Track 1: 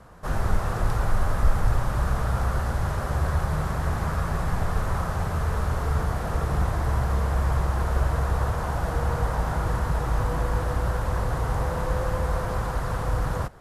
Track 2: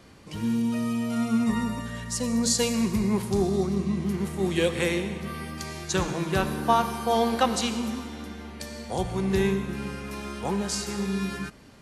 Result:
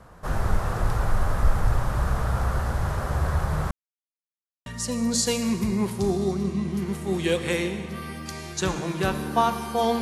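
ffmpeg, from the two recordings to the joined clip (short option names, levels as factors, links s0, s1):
-filter_complex "[0:a]apad=whole_dur=10.01,atrim=end=10.01,asplit=2[s0][s1];[s0]atrim=end=3.71,asetpts=PTS-STARTPTS,afade=t=out:st=3.706:d=0.004:c=hsin[s2];[s1]atrim=start=3.71:end=4.66,asetpts=PTS-STARTPTS,volume=0[s3];[1:a]atrim=start=1.98:end=7.33,asetpts=PTS-STARTPTS,afade=t=in:d=0.004:c=hsin[s4];[s2][s3][s4]concat=n=3:v=0:a=1"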